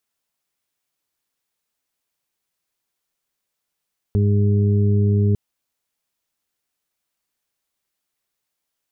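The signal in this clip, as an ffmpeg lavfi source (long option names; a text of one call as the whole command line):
ffmpeg -f lavfi -i "aevalsrc='0.188*sin(2*PI*102*t)+0.0841*sin(2*PI*204*t)+0.02*sin(2*PI*306*t)+0.0531*sin(2*PI*408*t)':duration=1.2:sample_rate=44100" out.wav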